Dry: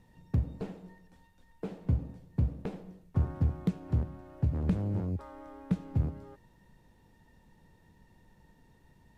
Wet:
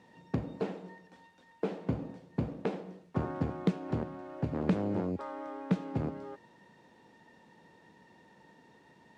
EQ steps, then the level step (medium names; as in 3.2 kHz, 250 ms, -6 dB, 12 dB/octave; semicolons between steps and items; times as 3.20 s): high-pass 270 Hz 12 dB/octave; distance through air 73 m; +8.0 dB